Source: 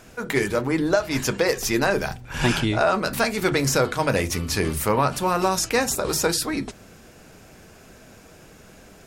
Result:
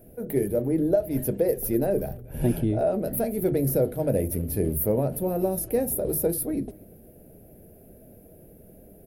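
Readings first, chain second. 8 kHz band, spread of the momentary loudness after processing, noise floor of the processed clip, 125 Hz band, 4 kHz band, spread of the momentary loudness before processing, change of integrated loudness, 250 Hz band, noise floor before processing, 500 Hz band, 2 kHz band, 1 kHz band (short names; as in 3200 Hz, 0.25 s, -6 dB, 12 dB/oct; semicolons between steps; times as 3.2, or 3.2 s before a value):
-7.0 dB, 5 LU, -51 dBFS, -1.0 dB, under -20 dB, 4 LU, -3.0 dB, -1.0 dB, -49 dBFS, -1.0 dB, -22.5 dB, -13.5 dB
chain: EQ curve 630 Hz 0 dB, 1100 Hz -27 dB, 1800 Hz -20 dB, 7400 Hz -26 dB, 11000 Hz +6 dB; speakerphone echo 0.24 s, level -23 dB; gain -1 dB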